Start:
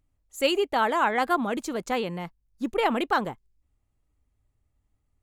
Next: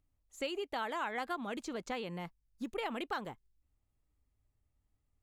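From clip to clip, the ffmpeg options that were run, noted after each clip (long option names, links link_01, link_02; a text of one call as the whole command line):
ffmpeg -i in.wav -filter_complex "[0:a]acrossover=split=1900|6600[link_01][link_02][link_03];[link_01]acompressor=threshold=-31dB:ratio=4[link_04];[link_02]acompressor=threshold=-37dB:ratio=4[link_05];[link_03]acompressor=threshold=-59dB:ratio=4[link_06];[link_04][link_05][link_06]amix=inputs=3:normalize=0,volume=-6dB" out.wav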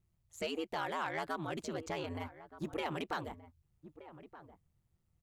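ffmpeg -i in.wav -filter_complex "[0:a]aeval=exprs='val(0)*sin(2*PI*79*n/s)':channel_layout=same,asoftclip=type=tanh:threshold=-30.5dB,asplit=2[link_01][link_02];[link_02]adelay=1224,volume=-14dB,highshelf=frequency=4000:gain=-27.6[link_03];[link_01][link_03]amix=inputs=2:normalize=0,volume=4dB" out.wav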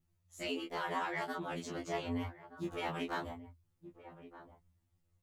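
ffmpeg -i in.wav -af "flanger=delay=19.5:depth=7.1:speed=0.8,afftfilt=real='re*2*eq(mod(b,4),0)':imag='im*2*eq(mod(b,4),0)':win_size=2048:overlap=0.75,volume=5.5dB" out.wav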